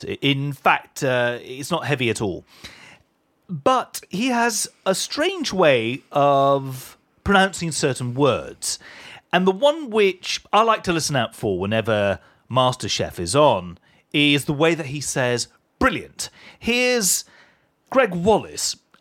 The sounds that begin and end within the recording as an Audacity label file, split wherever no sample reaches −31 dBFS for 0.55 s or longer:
3.510000	17.210000	sound